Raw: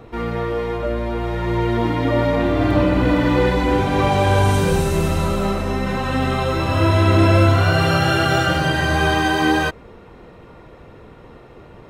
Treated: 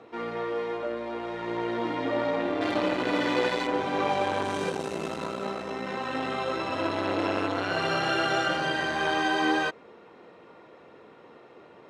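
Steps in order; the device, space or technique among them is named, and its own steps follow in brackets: public-address speaker with an overloaded transformer (transformer saturation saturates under 400 Hz; band-pass 280–6700 Hz); 2.61–3.67 s: treble shelf 2.8 kHz +11 dB; trim -6 dB

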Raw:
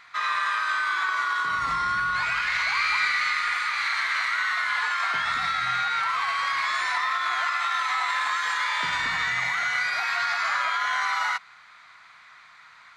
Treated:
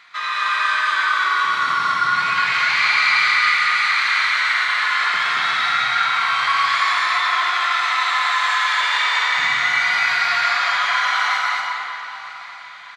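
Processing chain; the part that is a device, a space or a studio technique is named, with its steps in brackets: stadium PA (high-pass 140 Hz 24 dB/octave; peaking EQ 3.3 kHz +5.5 dB 1.2 oct; loudspeakers at several distances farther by 61 m -10 dB, 78 m -2 dB; reverberation RT60 3.1 s, pre-delay 101 ms, DRR -0.5 dB); 8.24–9.37 s: steep high-pass 390 Hz 36 dB/octave; feedback delay 958 ms, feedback 54%, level -19 dB

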